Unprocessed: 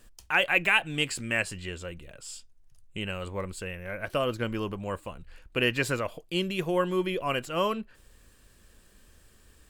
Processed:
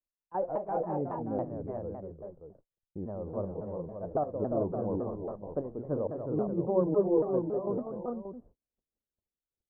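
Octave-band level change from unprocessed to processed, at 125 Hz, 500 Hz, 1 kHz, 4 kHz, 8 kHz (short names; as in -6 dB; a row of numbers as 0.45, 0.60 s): -2.0 dB, +1.0 dB, -4.0 dB, under -40 dB, under -40 dB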